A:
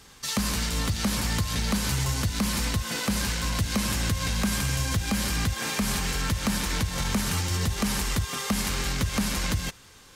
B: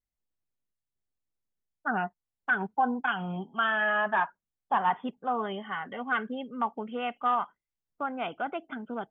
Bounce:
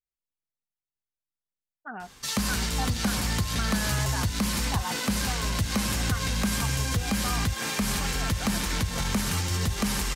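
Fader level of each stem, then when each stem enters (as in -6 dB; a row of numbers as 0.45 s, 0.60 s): -0.5 dB, -9.5 dB; 2.00 s, 0.00 s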